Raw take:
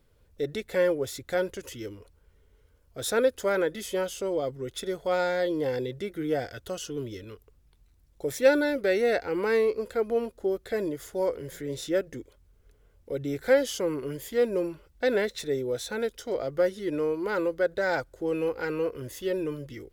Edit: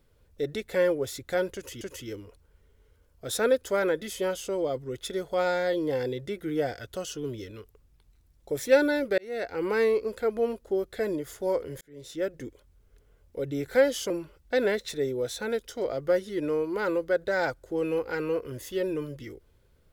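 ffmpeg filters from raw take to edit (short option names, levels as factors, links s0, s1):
-filter_complex "[0:a]asplit=5[s0][s1][s2][s3][s4];[s0]atrim=end=1.812[s5];[s1]atrim=start=1.538:end=8.91,asetpts=PTS-STARTPTS,afade=t=out:st=7.368:d=0.004:c=hsin[s6];[s2]atrim=start=8.91:end=11.54,asetpts=PTS-STARTPTS,afade=t=in:d=0.47,afade=t=out:st=2.626:d=0.004:c=hsin[s7];[s3]atrim=start=11.54:end=13.832,asetpts=PTS-STARTPTS,afade=t=in:d=0.64[s8];[s4]atrim=start=14.598[s9];[s6][s7][s8]concat=n=3:v=0:a=1[s10];[s5][s10]acrossfade=d=0.004:c1=hsin:c2=hsin[s11];[s11][s9]acrossfade=d=0.004:c1=hsin:c2=hsin"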